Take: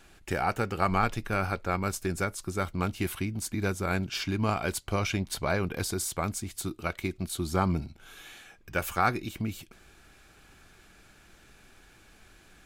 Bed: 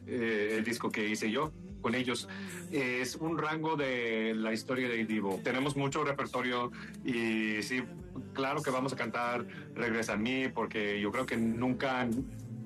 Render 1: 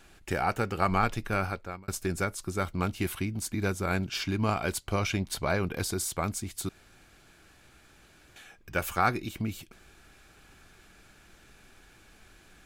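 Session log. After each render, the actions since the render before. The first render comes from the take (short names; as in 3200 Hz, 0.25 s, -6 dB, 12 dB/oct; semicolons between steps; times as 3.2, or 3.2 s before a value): 1.38–1.88 fade out; 6.69–8.36 room tone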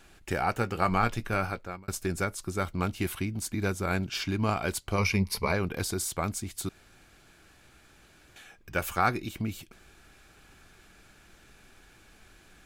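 0.52–1.77 doubler 17 ms -13 dB; 4.98–5.52 ripple EQ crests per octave 0.86, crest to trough 12 dB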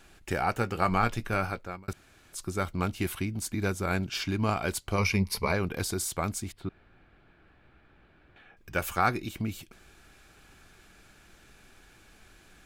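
1.93–2.33 room tone; 6.52–8.57 air absorption 450 m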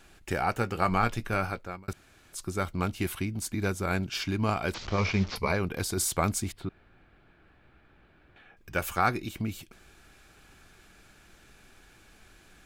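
4.74–5.36 delta modulation 32 kbps, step -34.5 dBFS; 5.97–6.65 gain +4 dB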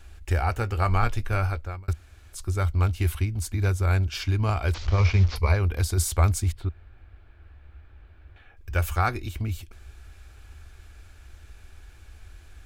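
resonant low shelf 110 Hz +12 dB, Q 3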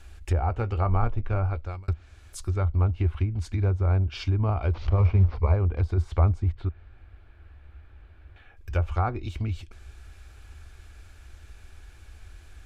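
treble ducked by the level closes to 1300 Hz, closed at -20 dBFS; dynamic EQ 1700 Hz, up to -8 dB, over -50 dBFS, Q 2.2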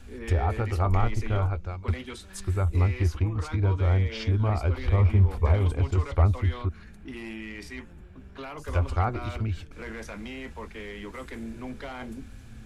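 add bed -6.5 dB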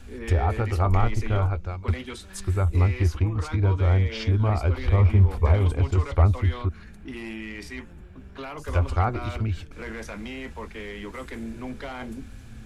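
gain +2.5 dB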